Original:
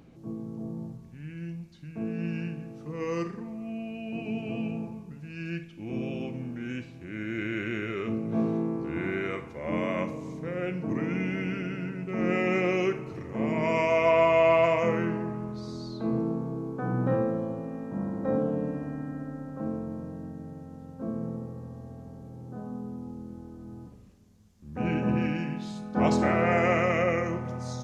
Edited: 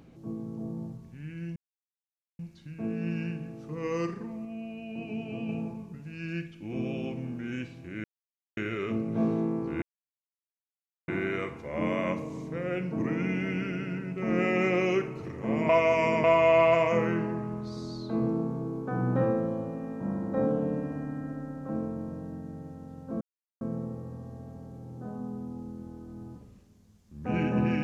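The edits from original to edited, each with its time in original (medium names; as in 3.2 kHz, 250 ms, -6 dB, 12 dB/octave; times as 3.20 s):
1.56 s: insert silence 0.83 s
3.62–4.66 s: gain -3 dB
7.21–7.74 s: mute
8.99 s: insert silence 1.26 s
13.60–14.15 s: reverse
21.12 s: insert silence 0.40 s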